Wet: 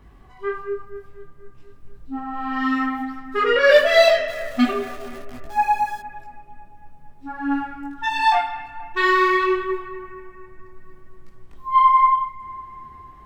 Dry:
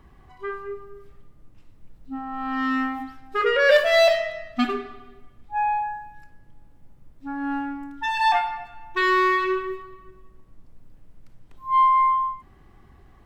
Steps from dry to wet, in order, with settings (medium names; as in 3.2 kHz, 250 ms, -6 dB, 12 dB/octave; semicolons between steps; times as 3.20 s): 4.28–6.00 s: jump at every zero crossing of -37 dBFS; bucket-brigade echo 240 ms, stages 4096, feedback 63%, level -15.5 dB; detune thickener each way 18 cents; trim +6 dB